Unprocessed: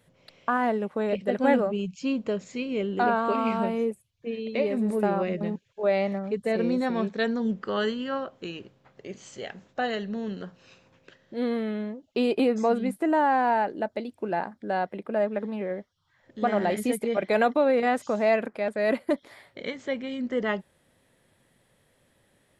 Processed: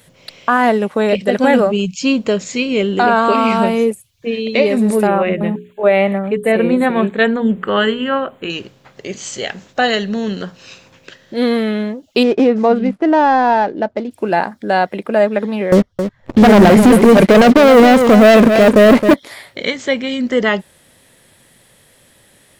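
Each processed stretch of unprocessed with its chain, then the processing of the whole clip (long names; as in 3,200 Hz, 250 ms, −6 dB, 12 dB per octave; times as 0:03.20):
0:05.07–0:08.50: Butterworth band-reject 5,400 Hz, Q 0.89 + mains-hum notches 60/120/180/240/300/360/420 Hz
0:12.23–0:14.11: running median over 15 samples + head-to-tape spacing loss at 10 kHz 26 dB
0:15.72–0:19.14: spectral tilt −4 dB per octave + leveller curve on the samples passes 3 + single-tap delay 268 ms −11.5 dB
whole clip: high-shelf EQ 2,500 Hz +9.5 dB; boost into a limiter +13 dB; level −1 dB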